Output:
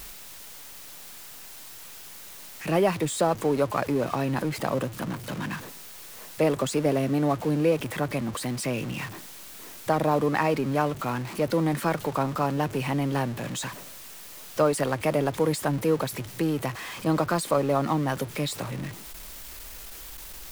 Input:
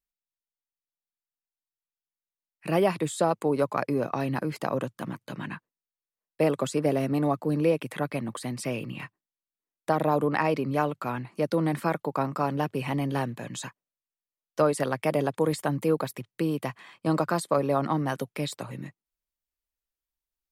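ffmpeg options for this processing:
ffmpeg -i in.wav -af "aeval=exprs='val(0)+0.5*0.0224*sgn(val(0))':channel_layout=same" out.wav

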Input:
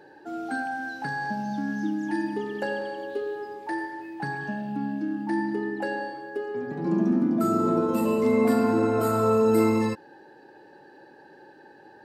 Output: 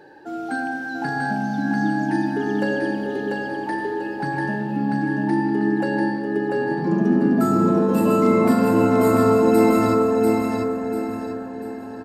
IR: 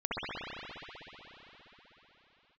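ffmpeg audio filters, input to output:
-filter_complex "[0:a]aecho=1:1:692|1384|2076|2768|3460:0.668|0.247|0.0915|0.0339|0.0125,asplit=2[link_01][link_02];[1:a]atrim=start_sample=2205,asetrate=24696,aresample=44100,lowshelf=frequency=380:gain=11.5[link_03];[link_02][link_03]afir=irnorm=-1:irlink=0,volume=-23.5dB[link_04];[link_01][link_04]amix=inputs=2:normalize=0,volume=3dB"

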